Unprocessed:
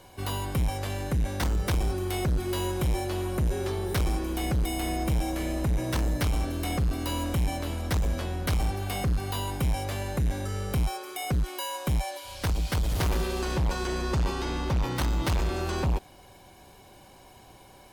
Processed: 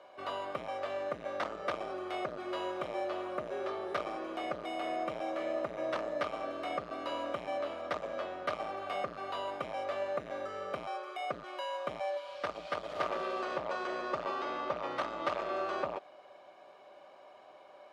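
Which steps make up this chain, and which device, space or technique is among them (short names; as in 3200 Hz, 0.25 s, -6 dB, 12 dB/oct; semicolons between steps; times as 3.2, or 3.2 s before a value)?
tin-can telephone (BPF 440–2900 Hz; small resonant body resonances 610/1200 Hz, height 14 dB, ringing for 40 ms); gain -4.5 dB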